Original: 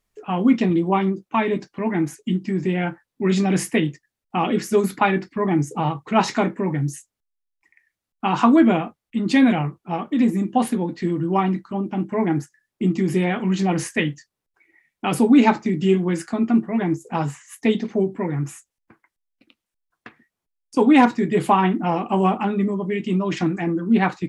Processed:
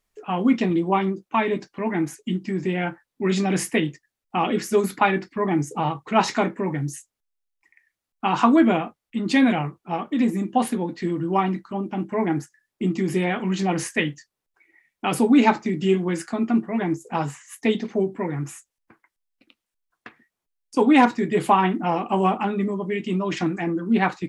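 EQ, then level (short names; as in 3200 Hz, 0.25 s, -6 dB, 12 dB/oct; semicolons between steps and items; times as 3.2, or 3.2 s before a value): bell 110 Hz -4.5 dB 2.8 oct; 0.0 dB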